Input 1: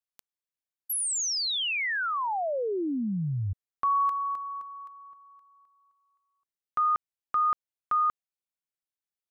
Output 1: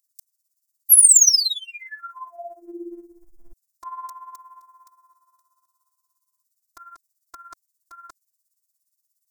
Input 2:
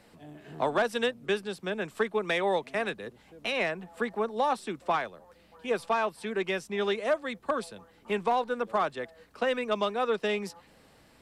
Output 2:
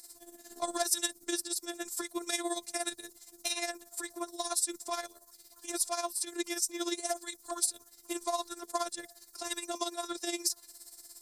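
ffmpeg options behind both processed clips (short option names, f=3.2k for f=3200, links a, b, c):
-af "aexciter=amount=9.4:drive=9.4:freq=4.5k,afftfilt=real='hypot(re,im)*cos(PI*b)':imag='0':win_size=512:overlap=0.75,tremolo=f=17:d=0.71,volume=-1.5dB"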